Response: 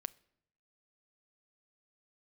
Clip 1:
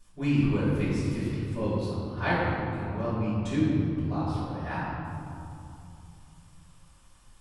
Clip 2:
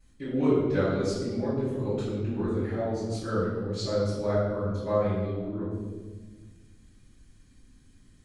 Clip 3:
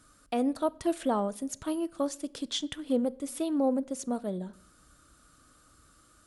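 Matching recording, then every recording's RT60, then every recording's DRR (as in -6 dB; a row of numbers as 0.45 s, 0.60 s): 3; 2.8 s, 1.4 s, 0.75 s; -13.5 dB, -14.0 dB, 16.0 dB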